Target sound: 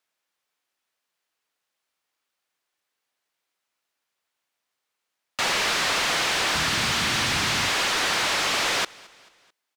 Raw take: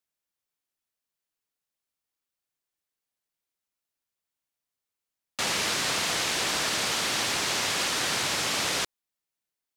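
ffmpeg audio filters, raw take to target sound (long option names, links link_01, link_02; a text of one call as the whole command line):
ffmpeg -i in.wav -filter_complex "[0:a]asplit=3[link_01][link_02][link_03];[link_01]afade=type=out:start_time=6.54:duration=0.02[link_04];[link_02]asubboost=boost=10.5:cutoff=150,afade=type=in:start_time=6.54:duration=0.02,afade=type=out:start_time=7.67:duration=0.02[link_05];[link_03]afade=type=in:start_time=7.67:duration=0.02[link_06];[link_04][link_05][link_06]amix=inputs=3:normalize=0,asplit=2[link_07][link_08];[link_08]highpass=frequency=720:poles=1,volume=19dB,asoftclip=type=tanh:threshold=-13.5dB[link_09];[link_07][link_09]amix=inputs=2:normalize=0,lowpass=frequency=2800:poles=1,volume=-6dB,aecho=1:1:219|438|657:0.0631|0.0315|0.0158" out.wav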